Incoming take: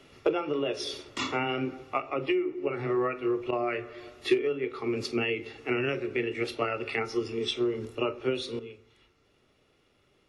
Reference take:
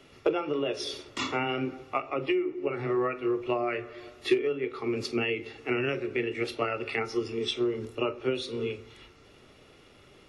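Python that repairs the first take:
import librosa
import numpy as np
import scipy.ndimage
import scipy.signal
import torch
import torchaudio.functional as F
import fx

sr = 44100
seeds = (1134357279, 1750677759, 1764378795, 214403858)

y = fx.fix_interpolate(x, sr, at_s=(3.51,), length_ms=14.0)
y = fx.gain(y, sr, db=fx.steps((0.0, 0.0), (8.59, 11.5)))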